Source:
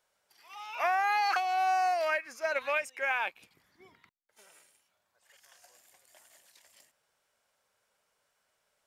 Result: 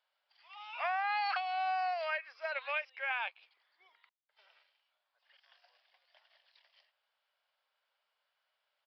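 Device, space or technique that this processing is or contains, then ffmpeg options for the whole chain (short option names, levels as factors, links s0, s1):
musical greeting card: -af "aresample=11025,aresample=44100,highpass=f=610:w=0.5412,highpass=f=610:w=1.3066,equalizer=f=3100:t=o:w=0.51:g=5,volume=0.531"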